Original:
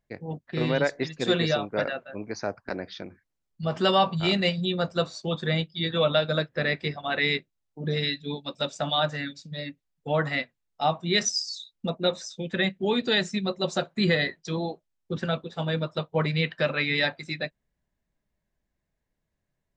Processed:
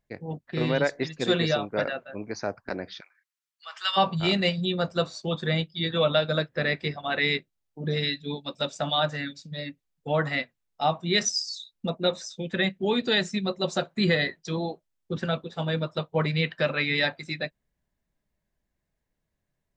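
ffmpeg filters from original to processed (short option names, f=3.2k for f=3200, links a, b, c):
-filter_complex "[0:a]asplit=3[a][b][c];[a]afade=t=out:st=2.99:d=0.02[d];[b]highpass=f=1.2k:w=0.5412,highpass=f=1.2k:w=1.3066,afade=t=in:st=2.99:d=0.02,afade=t=out:st=3.96:d=0.02[e];[c]afade=t=in:st=3.96:d=0.02[f];[d][e][f]amix=inputs=3:normalize=0"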